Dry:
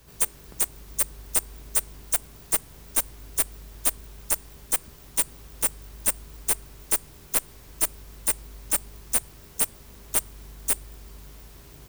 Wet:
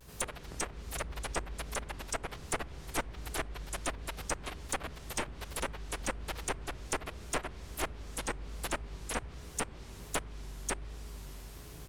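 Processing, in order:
delay with pitch and tempo change per echo 107 ms, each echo +3 semitones, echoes 3, each echo −6 dB
treble cut that deepens with the level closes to 2,200 Hz, closed at −22.5 dBFS
pitch vibrato 1.3 Hz 92 cents

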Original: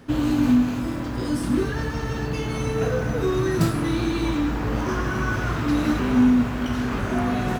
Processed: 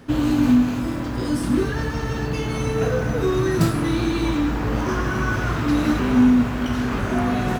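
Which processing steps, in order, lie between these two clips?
level +2 dB

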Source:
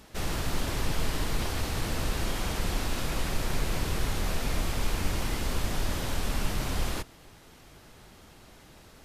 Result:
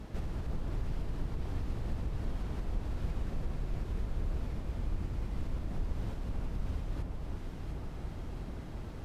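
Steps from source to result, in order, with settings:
high-pass filter 56 Hz 6 dB per octave
spectral tilt −3.5 dB per octave
downward compressor 8 to 1, threshold −35 dBFS, peak gain reduction 21 dB
on a send: delay that swaps between a low-pass and a high-pass 351 ms, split 1,300 Hz, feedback 79%, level −3.5 dB
on the sum: level +1 dB

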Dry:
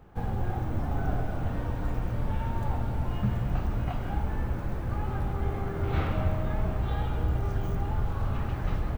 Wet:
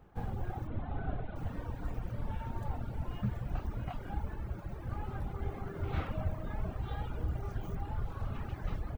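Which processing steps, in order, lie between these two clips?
0:00.67–0:01.36: Butterworth low-pass 4,100 Hz 72 dB per octave
reverb reduction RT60 1.1 s
0:04.34–0:04.80: notch comb filter 250 Hz
level −5.5 dB

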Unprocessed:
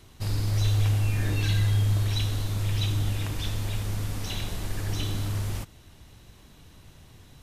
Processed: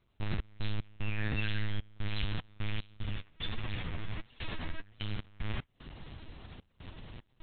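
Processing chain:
linear-prediction vocoder at 8 kHz pitch kept
dynamic equaliser 2,100 Hz, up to +7 dB, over −53 dBFS, Q 0.76
downward compressor 2.5 to 1, threshold −37 dBFS, peak gain reduction 11.5 dB
gate pattern ".x.x.xxxx.xx" 75 BPM −24 dB
0:02.97–0:05.19: flanger 1.5 Hz, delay 7.8 ms, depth 5.1 ms, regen +29%
level +4 dB

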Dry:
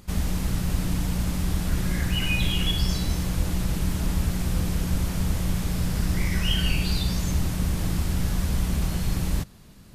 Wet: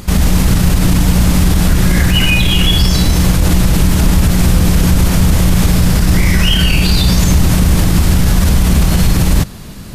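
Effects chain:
boost into a limiter +20.5 dB
level −1 dB

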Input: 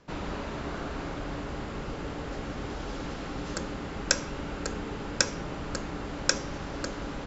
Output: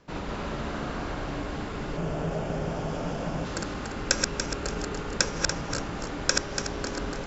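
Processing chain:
feedback delay that plays each chunk backwards 144 ms, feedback 58%, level −2.5 dB
0:01.97–0:03.45: thirty-one-band graphic EQ 160 Hz +10 dB, 630 Hz +10 dB, 2,000 Hz −4 dB, 4,000 Hz −8 dB

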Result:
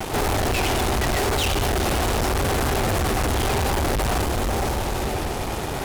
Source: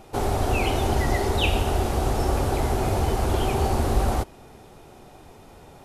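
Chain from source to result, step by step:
brickwall limiter −17 dBFS, peak gain reduction 7.5 dB
feedback delay with all-pass diffusion 487 ms, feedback 43%, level −12 dB
pitch vibrato 0.88 Hz 40 cents
fuzz pedal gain 47 dB, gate −49 dBFS
level −7.5 dB

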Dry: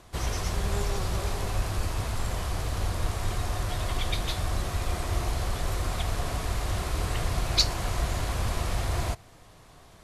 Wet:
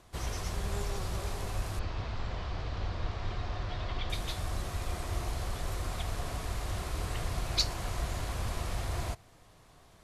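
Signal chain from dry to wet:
0:01.79–0:04.10: low-pass filter 4,800 Hz 24 dB per octave
level −6 dB

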